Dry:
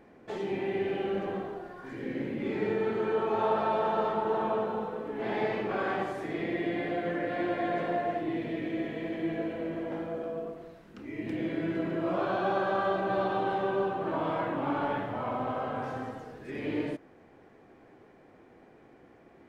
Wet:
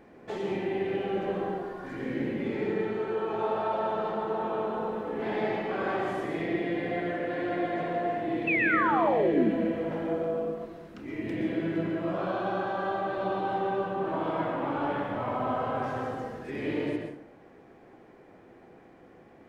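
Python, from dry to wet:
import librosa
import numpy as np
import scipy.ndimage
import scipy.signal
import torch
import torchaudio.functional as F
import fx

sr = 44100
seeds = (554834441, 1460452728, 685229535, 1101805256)

y = fx.rider(x, sr, range_db=3, speed_s=0.5)
y = fx.spec_paint(y, sr, seeds[0], shape='fall', start_s=8.47, length_s=1.04, low_hz=200.0, high_hz=2700.0, level_db=-26.0)
y = fx.rev_plate(y, sr, seeds[1], rt60_s=0.63, hf_ratio=0.65, predelay_ms=110, drr_db=3.0)
y = F.gain(torch.from_numpy(y), -1.0).numpy()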